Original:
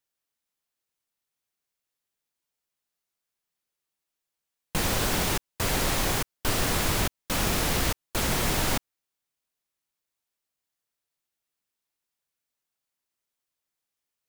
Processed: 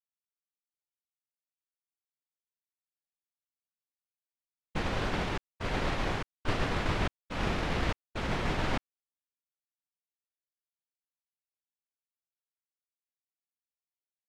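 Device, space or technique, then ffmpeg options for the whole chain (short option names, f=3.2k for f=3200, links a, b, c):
hearing-loss simulation: -af "lowpass=2.9k,agate=range=-33dB:threshold=-22dB:ratio=3:detection=peak"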